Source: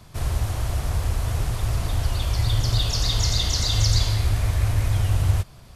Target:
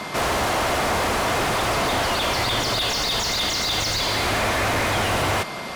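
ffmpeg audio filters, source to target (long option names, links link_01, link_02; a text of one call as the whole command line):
ffmpeg -i in.wav -filter_complex "[0:a]lowshelf=frequency=150:width_type=q:width=1.5:gain=-9,asplit=2[link_01][link_02];[link_02]highpass=frequency=720:poles=1,volume=33dB,asoftclip=type=tanh:threshold=-11.5dB[link_03];[link_01][link_03]amix=inputs=2:normalize=0,lowpass=frequency=2000:poles=1,volume=-6dB,aeval=exprs='val(0)+0.0126*sin(2*PI*2100*n/s)':channel_layout=same" out.wav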